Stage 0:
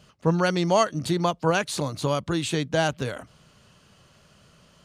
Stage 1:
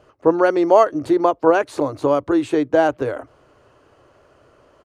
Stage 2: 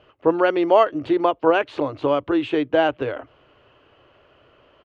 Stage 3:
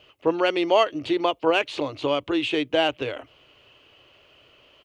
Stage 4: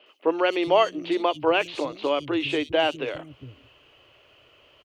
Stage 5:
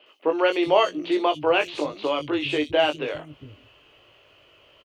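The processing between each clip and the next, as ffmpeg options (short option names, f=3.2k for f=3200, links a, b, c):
-af "firequalizer=gain_entry='entry(120,0);entry(180,-15);entry(290,11);entry(3400,-9)':delay=0.05:min_phase=1"
-af "lowpass=f=3k:t=q:w=3.3,volume=-3dB"
-af "aexciter=amount=2.7:drive=8.1:freq=2.2k,volume=-4dB"
-filter_complex "[0:a]acrossover=split=220|4300[a][b][c];[c]adelay=60[d];[a]adelay=410[e];[e][b][d]amix=inputs=3:normalize=0"
-filter_complex "[0:a]asplit=2[a][b];[b]adelay=20,volume=-6dB[c];[a][c]amix=inputs=2:normalize=0"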